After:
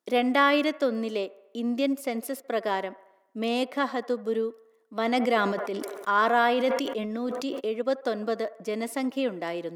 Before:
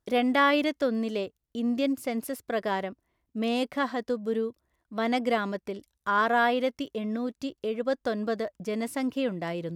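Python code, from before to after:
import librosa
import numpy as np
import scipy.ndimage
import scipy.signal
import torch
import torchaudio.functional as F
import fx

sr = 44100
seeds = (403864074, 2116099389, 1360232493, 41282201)

y = scipy.signal.sosfilt(scipy.signal.butter(4, 230.0, 'highpass', fs=sr, output='sos'), x)
y = fx.notch(y, sr, hz=1600.0, q=16.0)
y = fx.echo_wet_bandpass(y, sr, ms=74, feedback_pct=58, hz=930.0, wet_db=-17.5)
y = fx.sustainer(y, sr, db_per_s=36.0, at=(5.0, 7.59), fade=0.02)
y = y * librosa.db_to_amplitude(1.5)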